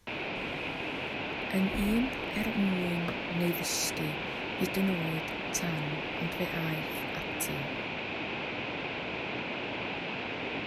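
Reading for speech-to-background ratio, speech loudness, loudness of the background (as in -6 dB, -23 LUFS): 1.0 dB, -34.0 LUFS, -35.0 LUFS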